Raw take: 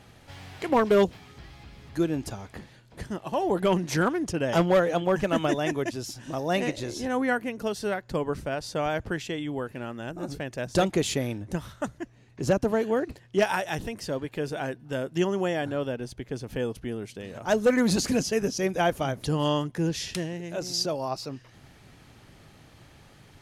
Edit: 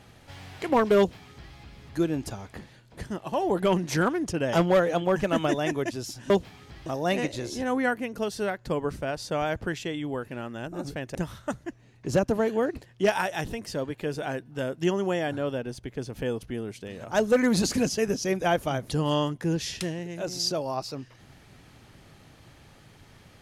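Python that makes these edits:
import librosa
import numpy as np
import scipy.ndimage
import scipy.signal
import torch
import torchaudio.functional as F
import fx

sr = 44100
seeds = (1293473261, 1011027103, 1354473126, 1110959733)

y = fx.edit(x, sr, fx.duplicate(start_s=0.98, length_s=0.56, to_s=6.3),
    fx.cut(start_s=10.59, length_s=0.9), tone=tone)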